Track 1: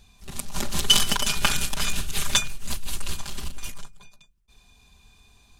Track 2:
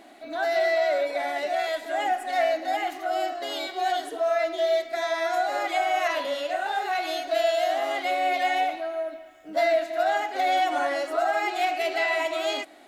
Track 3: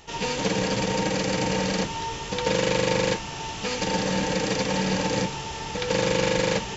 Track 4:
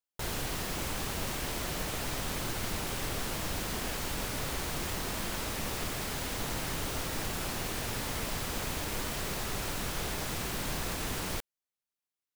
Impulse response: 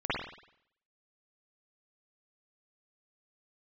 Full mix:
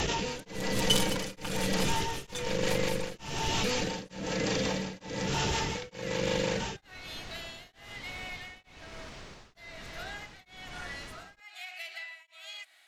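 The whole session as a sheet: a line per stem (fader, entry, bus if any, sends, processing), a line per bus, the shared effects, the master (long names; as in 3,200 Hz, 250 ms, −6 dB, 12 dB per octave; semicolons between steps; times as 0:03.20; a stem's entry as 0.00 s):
−9.0 dB, 0.00 s, no send, no processing
−2.0 dB, 0.00 s, no send, Chebyshev high-pass filter 2,100 Hz, order 2; downward compressor 3 to 1, threshold −38 dBFS, peak gain reduction 10 dB
−7.0 dB, 0.00 s, no send, rotating-speaker cabinet horn 5.5 Hz; envelope flattener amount 100%
−9.5 dB, 0.00 s, no send, low-pass filter 6,300 Hz 24 dB per octave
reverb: not used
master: tremolo along a rectified sine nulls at 1.1 Hz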